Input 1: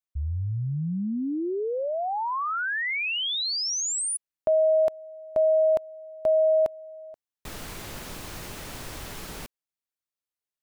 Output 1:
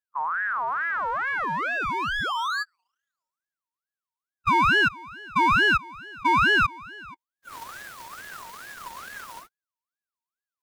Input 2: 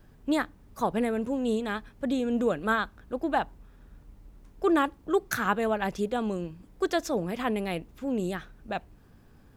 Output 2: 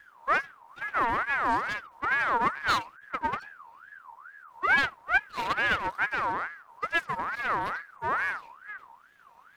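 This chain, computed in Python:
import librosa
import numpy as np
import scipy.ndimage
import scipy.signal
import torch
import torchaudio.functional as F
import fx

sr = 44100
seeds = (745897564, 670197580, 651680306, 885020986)

y = fx.hpss_only(x, sr, part='harmonic')
y = np.abs(y)
y = fx.ring_lfo(y, sr, carrier_hz=1300.0, swing_pct=30, hz=2.3)
y = y * librosa.db_to_amplitude(4.0)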